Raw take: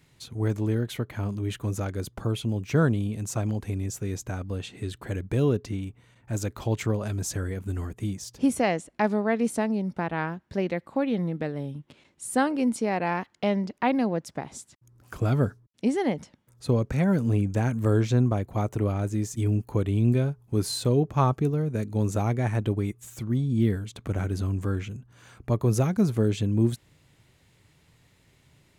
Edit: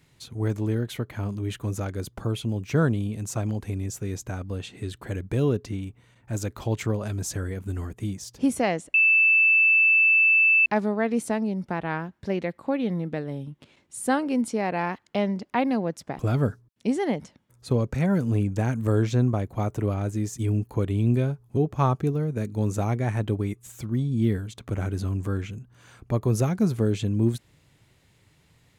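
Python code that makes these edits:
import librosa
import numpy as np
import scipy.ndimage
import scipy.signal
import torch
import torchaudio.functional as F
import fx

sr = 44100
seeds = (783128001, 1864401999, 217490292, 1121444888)

y = fx.edit(x, sr, fx.insert_tone(at_s=8.94, length_s=1.72, hz=2640.0, db=-15.0),
    fx.cut(start_s=14.47, length_s=0.7),
    fx.cut(start_s=20.55, length_s=0.4), tone=tone)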